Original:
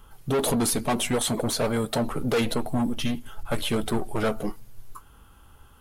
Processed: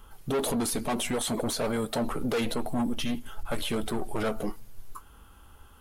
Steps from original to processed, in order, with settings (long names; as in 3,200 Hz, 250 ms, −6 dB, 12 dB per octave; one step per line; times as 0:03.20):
parametric band 130 Hz −6 dB 0.51 octaves
brickwall limiter −22 dBFS, peak gain reduction 6.5 dB